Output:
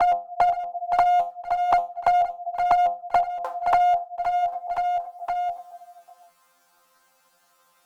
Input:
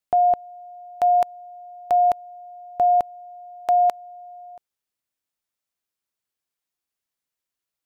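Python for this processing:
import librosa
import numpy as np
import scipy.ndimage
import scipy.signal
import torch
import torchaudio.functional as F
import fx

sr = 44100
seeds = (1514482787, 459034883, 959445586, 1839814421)

y = fx.local_reverse(x, sr, ms=246.0)
y = fx.band_shelf(y, sr, hz=900.0, db=12.0, octaves=1.7)
y = fx.resonator_bank(y, sr, root=53, chord='fifth', decay_s=0.27)
y = fx.env_flanger(y, sr, rest_ms=11.5, full_db=-24.0)
y = fx.clip_asym(y, sr, top_db=-23.0, bottom_db=-18.5)
y = fx.echo_feedback(y, sr, ms=518, feedback_pct=34, wet_db=-15.5)
y = fx.band_squash(y, sr, depth_pct=100)
y = F.gain(torch.from_numpy(y), 7.0).numpy()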